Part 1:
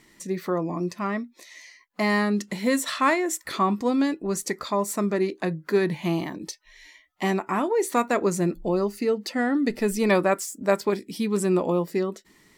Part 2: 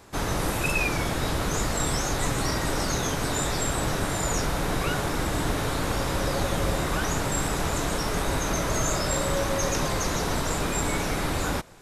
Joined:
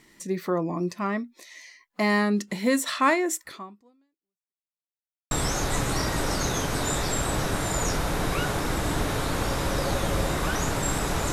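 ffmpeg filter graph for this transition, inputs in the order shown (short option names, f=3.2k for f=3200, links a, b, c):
-filter_complex "[0:a]apad=whole_dur=11.32,atrim=end=11.32,asplit=2[a][b];[a]atrim=end=4.77,asetpts=PTS-STARTPTS,afade=t=out:st=3.39:d=1.38:c=exp[c];[b]atrim=start=4.77:end=5.31,asetpts=PTS-STARTPTS,volume=0[d];[1:a]atrim=start=1.8:end=7.81,asetpts=PTS-STARTPTS,afade=t=in:d=0.004:c=hsin[e];[c][d][e]concat=n=3:v=0:a=1"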